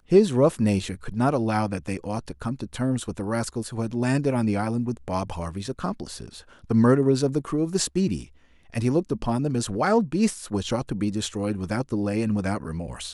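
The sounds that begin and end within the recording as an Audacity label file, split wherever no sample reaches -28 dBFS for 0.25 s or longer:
6.710000	8.210000	sound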